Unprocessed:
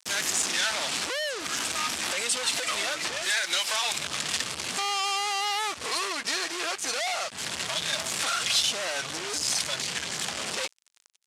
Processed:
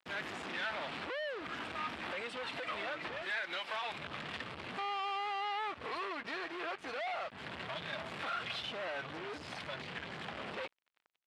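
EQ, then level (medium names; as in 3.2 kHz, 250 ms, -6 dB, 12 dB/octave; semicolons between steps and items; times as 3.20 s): distance through air 480 m; -4.5 dB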